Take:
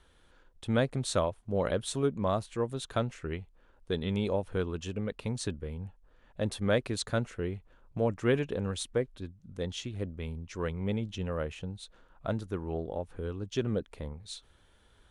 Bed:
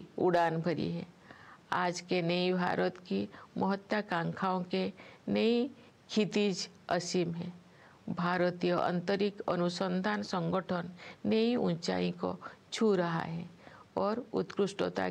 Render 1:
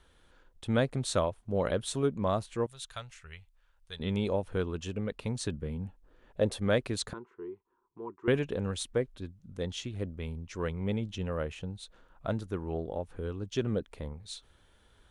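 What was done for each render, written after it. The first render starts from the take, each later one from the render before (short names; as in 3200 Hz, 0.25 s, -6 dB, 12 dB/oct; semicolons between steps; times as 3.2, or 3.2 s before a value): 2.66–4 passive tone stack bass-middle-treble 10-0-10; 5.52–6.59 bell 160 Hz -> 560 Hz +8.5 dB; 7.13–8.28 double band-pass 610 Hz, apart 1.4 oct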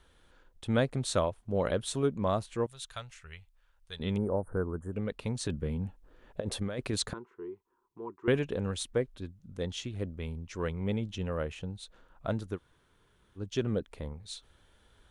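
4.17–4.93 elliptic band-stop 1500–8900 Hz; 5.45–7.14 negative-ratio compressor -32 dBFS; 12.56–13.38 room tone, crossfade 0.06 s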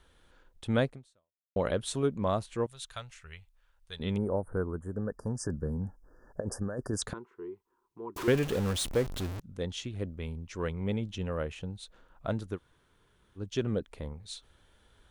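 0.87–1.56 fade out exponential; 4.92–7.02 brick-wall FIR band-stop 1800–4700 Hz; 8.16–9.4 zero-crossing step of -32 dBFS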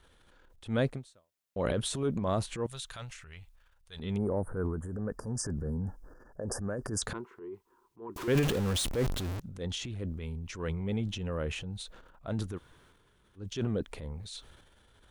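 transient shaper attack -7 dB, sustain +8 dB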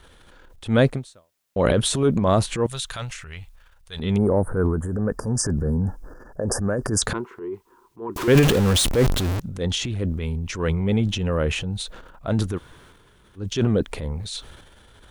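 gain +11.5 dB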